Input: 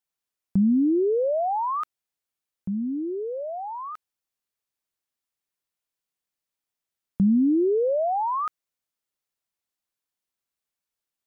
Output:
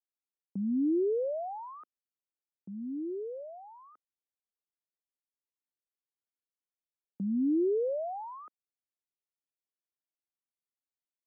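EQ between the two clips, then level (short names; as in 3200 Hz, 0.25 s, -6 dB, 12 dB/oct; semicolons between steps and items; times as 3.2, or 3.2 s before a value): dynamic EQ 480 Hz, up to +4 dB, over -32 dBFS, Q 0.74; ladder band-pass 380 Hz, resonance 25%; 0.0 dB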